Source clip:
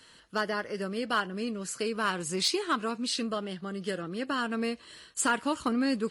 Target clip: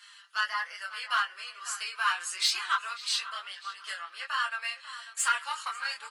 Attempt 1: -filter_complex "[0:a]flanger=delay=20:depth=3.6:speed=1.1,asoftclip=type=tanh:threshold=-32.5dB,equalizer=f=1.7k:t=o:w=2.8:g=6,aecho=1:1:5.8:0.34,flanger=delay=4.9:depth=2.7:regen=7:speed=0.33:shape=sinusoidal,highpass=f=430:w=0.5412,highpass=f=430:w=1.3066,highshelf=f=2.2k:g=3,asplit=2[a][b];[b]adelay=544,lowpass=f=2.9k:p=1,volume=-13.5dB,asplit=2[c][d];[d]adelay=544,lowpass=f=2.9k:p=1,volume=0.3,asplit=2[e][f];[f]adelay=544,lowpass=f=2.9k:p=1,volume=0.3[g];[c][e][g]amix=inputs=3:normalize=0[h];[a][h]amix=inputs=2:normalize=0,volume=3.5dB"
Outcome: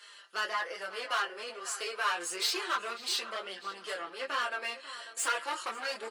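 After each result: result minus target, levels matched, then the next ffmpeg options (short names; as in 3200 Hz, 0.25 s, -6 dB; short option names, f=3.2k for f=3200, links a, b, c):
500 Hz band +18.5 dB; soft clip: distortion +10 dB
-filter_complex "[0:a]flanger=delay=20:depth=3.6:speed=1.1,asoftclip=type=tanh:threshold=-32.5dB,equalizer=f=1.7k:t=o:w=2.8:g=6,aecho=1:1:5.8:0.34,flanger=delay=4.9:depth=2.7:regen=7:speed=0.33:shape=sinusoidal,highpass=f=990:w=0.5412,highpass=f=990:w=1.3066,highshelf=f=2.2k:g=3,asplit=2[a][b];[b]adelay=544,lowpass=f=2.9k:p=1,volume=-13.5dB,asplit=2[c][d];[d]adelay=544,lowpass=f=2.9k:p=1,volume=0.3,asplit=2[e][f];[f]adelay=544,lowpass=f=2.9k:p=1,volume=0.3[g];[c][e][g]amix=inputs=3:normalize=0[h];[a][h]amix=inputs=2:normalize=0,volume=3.5dB"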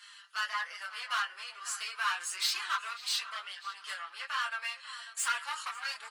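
soft clip: distortion +10 dB
-filter_complex "[0:a]flanger=delay=20:depth=3.6:speed=1.1,asoftclip=type=tanh:threshold=-23dB,equalizer=f=1.7k:t=o:w=2.8:g=6,aecho=1:1:5.8:0.34,flanger=delay=4.9:depth=2.7:regen=7:speed=0.33:shape=sinusoidal,highpass=f=990:w=0.5412,highpass=f=990:w=1.3066,highshelf=f=2.2k:g=3,asplit=2[a][b];[b]adelay=544,lowpass=f=2.9k:p=1,volume=-13.5dB,asplit=2[c][d];[d]adelay=544,lowpass=f=2.9k:p=1,volume=0.3,asplit=2[e][f];[f]adelay=544,lowpass=f=2.9k:p=1,volume=0.3[g];[c][e][g]amix=inputs=3:normalize=0[h];[a][h]amix=inputs=2:normalize=0,volume=3.5dB"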